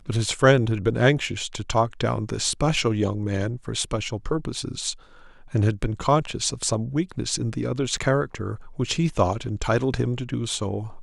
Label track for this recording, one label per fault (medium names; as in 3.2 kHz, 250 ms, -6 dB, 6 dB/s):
7.970000	7.970000	dropout 3.2 ms